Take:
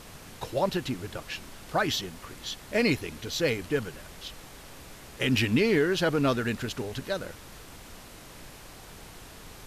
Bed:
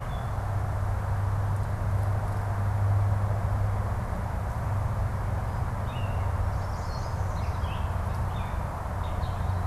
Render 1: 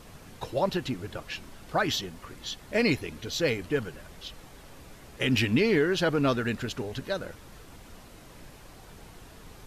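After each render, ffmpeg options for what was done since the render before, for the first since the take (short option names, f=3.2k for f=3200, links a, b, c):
-af "afftdn=nr=6:nf=-48"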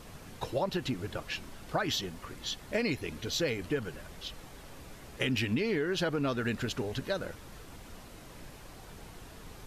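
-af "acompressor=threshold=-27dB:ratio=6"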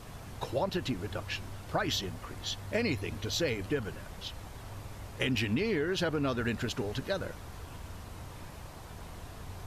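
-filter_complex "[1:a]volume=-17.5dB[a];[0:a][a]amix=inputs=2:normalize=0"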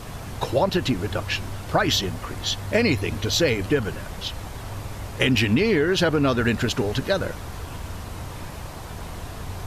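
-af "volume=10.5dB"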